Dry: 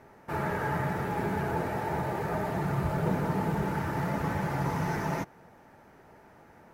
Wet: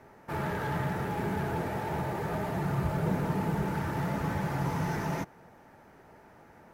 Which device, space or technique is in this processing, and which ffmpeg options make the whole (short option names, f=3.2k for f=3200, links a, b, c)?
one-band saturation: -filter_complex "[0:a]acrossover=split=290|3900[a][b][c];[b]asoftclip=type=tanh:threshold=-30dB[d];[a][d][c]amix=inputs=3:normalize=0"